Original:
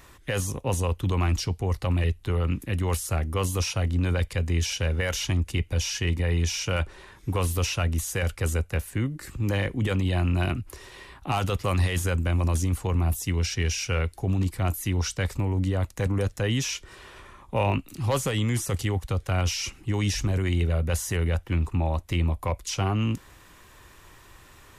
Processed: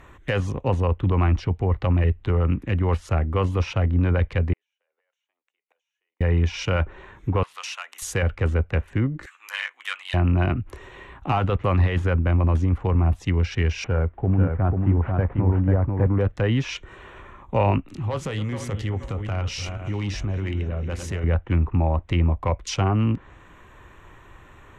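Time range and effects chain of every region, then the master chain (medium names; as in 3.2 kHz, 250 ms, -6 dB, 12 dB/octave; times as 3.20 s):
4.53–6.21 s: high-pass 560 Hz 24 dB/octave + compression 12:1, threshold -34 dBFS + inverted gate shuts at -37 dBFS, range -41 dB
7.43–8.02 s: high-pass 950 Hz 24 dB/octave + compression 2:1, threshold -36 dBFS
9.26–10.14 s: high-pass 1.2 kHz 24 dB/octave + doubling 12 ms -6 dB
13.84–16.06 s: CVSD coder 32 kbps + low-pass 1.5 kHz + delay 491 ms -3.5 dB
17.87–21.24 s: backward echo that repeats 238 ms, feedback 52%, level -10 dB + compression 2:1, threshold -33 dBFS + doubling 20 ms -12 dB
whole clip: local Wiener filter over 9 samples; low-pass that closes with the level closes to 2.1 kHz, closed at -22.5 dBFS; trim +4.5 dB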